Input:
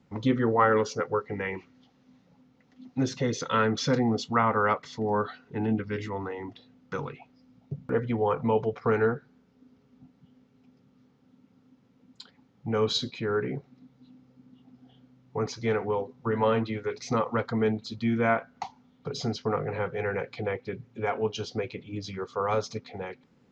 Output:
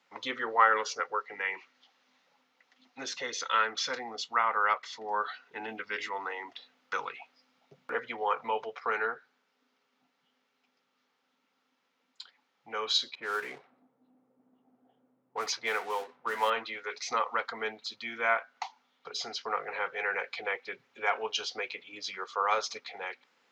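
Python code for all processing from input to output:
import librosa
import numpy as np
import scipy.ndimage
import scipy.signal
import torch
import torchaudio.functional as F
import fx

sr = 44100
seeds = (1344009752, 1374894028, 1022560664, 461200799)

y = fx.chain(x, sr, fx.law_mismatch(coded='mu'),
    fx.env_lowpass(base_hz=360.0, full_db=-23.5),
    fx.high_shelf(hz=6100.0, db=8.0), at=(13.15, 16.5))
y = scipy.signal.sosfilt(scipy.signal.butter(2, 790.0, 'highpass', fs=sr, output='sos'), y)
y = fx.peak_eq(y, sr, hz=2700.0, db=5.0, octaves=2.6)
y = fx.rider(y, sr, range_db=4, speed_s=2.0)
y = y * 10.0 ** (-2.0 / 20.0)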